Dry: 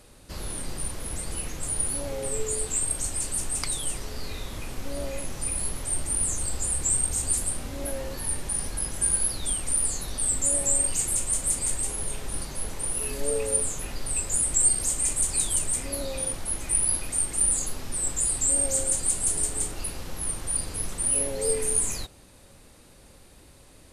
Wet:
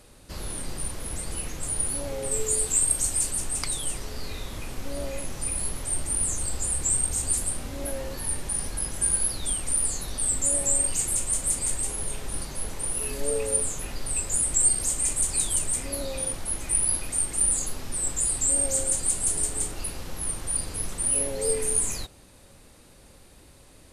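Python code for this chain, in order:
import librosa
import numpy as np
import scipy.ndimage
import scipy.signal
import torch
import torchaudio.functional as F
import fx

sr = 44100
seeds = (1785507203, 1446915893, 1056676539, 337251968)

y = fx.high_shelf(x, sr, hz=6600.0, db=7.5, at=(2.31, 3.31))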